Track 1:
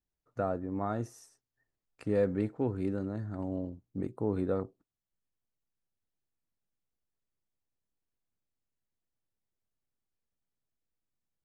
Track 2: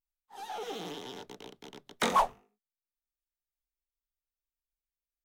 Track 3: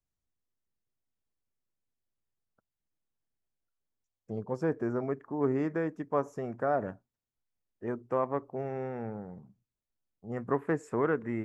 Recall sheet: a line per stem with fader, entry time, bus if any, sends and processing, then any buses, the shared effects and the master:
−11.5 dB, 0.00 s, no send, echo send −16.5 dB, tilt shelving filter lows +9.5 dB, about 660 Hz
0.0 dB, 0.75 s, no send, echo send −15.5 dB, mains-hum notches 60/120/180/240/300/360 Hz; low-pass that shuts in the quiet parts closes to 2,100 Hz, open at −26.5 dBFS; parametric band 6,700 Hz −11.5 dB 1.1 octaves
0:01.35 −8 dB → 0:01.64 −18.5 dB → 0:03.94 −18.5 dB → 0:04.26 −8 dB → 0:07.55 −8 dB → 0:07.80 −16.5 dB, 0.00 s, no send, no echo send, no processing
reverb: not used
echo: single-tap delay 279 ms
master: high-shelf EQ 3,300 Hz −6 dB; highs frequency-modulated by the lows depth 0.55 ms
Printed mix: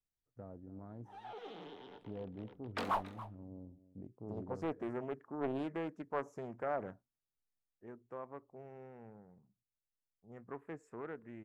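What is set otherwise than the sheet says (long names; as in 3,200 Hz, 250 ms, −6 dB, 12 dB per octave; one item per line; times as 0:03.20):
stem 1 −11.5 dB → −21.5 dB
stem 2 0.0 dB → −9.0 dB
master: missing high-shelf EQ 3,300 Hz −6 dB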